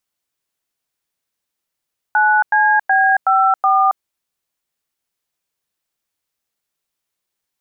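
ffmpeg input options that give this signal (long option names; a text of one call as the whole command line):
ffmpeg -f lavfi -i "aevalsrc='0.224*clip(min(mod(t,0.372),0.274-mod(t,0.372))/0.002,0,1)*(eq(floor(t/0.372),0)*(sin(2*PI*852*mod(t,0.372))+sin(2*PI*1477*mod(t,0.372)))+eq(floor(t/0.372),1)*(sin(2*PI*852*mod(t,0.372))+sin(2*PI*1633*mod(t,0.372)))+eq(floor(t/0.372),2)*(sin(2*PI*770*mod(t,0.372))+sin(2*PI*1633*mod(t,0.372)))+eq(floor(t/0.372),3)*(sin(2*PI*770*mod(t,0.372))+sin(2*PI*1336*mod(t,0.372)))+eq(floor(t/0.372),4)*(sin(2*PI*770*mod(t,0.372))+sin(2*PI*1209*mod(t,0.372))))':duration=1.86:sample_rate=44100" out.wav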